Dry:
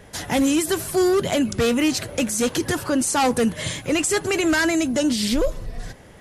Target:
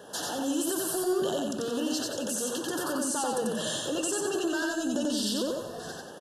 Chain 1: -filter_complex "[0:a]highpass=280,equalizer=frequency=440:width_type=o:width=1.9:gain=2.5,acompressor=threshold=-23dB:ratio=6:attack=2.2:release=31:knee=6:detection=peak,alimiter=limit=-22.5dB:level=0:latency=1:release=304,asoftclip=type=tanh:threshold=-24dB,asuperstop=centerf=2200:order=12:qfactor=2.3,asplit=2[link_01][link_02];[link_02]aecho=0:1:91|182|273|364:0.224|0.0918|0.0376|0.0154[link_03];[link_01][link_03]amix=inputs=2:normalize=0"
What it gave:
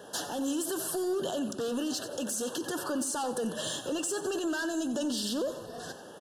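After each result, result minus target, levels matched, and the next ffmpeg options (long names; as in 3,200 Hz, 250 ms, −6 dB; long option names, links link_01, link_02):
soft clipping: distortion +20 dB; echo-to-direct −11.5 dB; downward compressor: peak gain reduction −5 dB
-filter_complex "[0:a]highpass=280,equalizer=frequency=440:width_type=o:width=1.9:gain=2.5,acompressor=threshold=-23dB:ratio=6:attack=2.2:release=31:knee=6:detection=peak,alimiter=limit=-22.5dB:level=0:latency=1:release=304,asoftclip=type=tanh:threshold=-14dB,asuperstop=centerf=2200:order=12:qfactor=2.3,asplit=2[link_01][link_02];[link_02]aecho=0:1:91|182|273|364:0.224|0.0918|0.0376|0.0154[link_03];[link_01][link_03]amix=inputs=2:normalize=0"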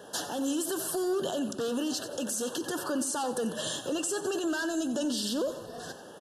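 echo-to-direct −11.5 dB; downward compressor: peak gain reduction −5 dB
-filter_complex "[0:a]highpass=280,equalizer=frequency=440:width_type=o:width=1.9:gain=2.5,acompressor=threshold=-23dB:ratio=6:attack=2.2:release=31:knee=6:detection=peak,alimiter=limit=-22.5dB:level=0:latency=1:release=304,asoftclip=type=tanh:threshold=-14dB,asuperstop=centerf=2200:order=12:qfactor=2.3,asplit=2[link_01][link_02];[link_02]aecho=0:1:91|182|273|364|455:0.841|0.345|0.141|0.058|0.0238[link_03];[link_01][link_03]amix=inputs=2:normalize=0"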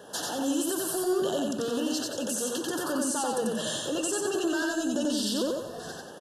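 downward compressor: peak gain reduction −5 dB
-filter_complex "[0:a]highpass=280,equalizer=frequency=440:width_type=o:width=1.9:gain=2.5,acompressor=threshold=-29dB:ratio=6:attack=2.2:release=31:knee=6:detection=peak,alimiter=limit=-22.5dB:level=0:latency=1:release=304,asoftclip=type=tanh:threshold=-14dB,asuperstop=centerf=2200:order=12:qfactor=2.3,asplit=2[link_01][link_02];[link_02]aecho=0:1:91|182|273|364|455:0.841|0.345|0.141|0.058|0.0238[link_03];[link_01][link_03]amix=inputs=2:normalize=0"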